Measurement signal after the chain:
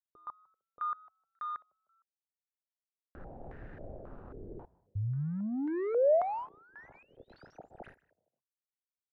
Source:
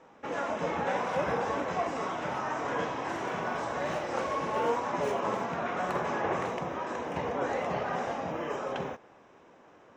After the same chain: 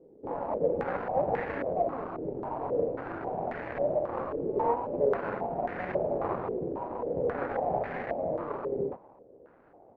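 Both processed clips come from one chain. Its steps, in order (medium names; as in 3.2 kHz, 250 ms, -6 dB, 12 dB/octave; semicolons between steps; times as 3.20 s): median filter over 41 samples; peaking EQ 210 Hz -3 dB 0.77 oct; frequency-shifting echo 153 ms, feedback 43%, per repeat +39 Hz, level -23.5 dB; step-sequenced low-pass 3.7 Hz 410–1800 Hz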